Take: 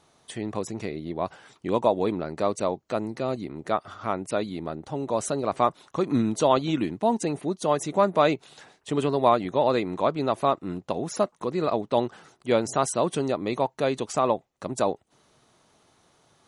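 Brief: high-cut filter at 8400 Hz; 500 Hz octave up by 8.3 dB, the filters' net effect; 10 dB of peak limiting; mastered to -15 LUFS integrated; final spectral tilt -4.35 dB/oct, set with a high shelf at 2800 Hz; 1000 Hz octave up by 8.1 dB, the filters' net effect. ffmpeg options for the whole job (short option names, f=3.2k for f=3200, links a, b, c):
-af "lowpass=8.4k,equalizer=f=500:t=o:g=8,equalizer=f=1k:t=o:g=8.5,highshelf=f=2.8k:g=-8.5,volume=8dB,alimiter=limit=-1dB:level=0:latency=1"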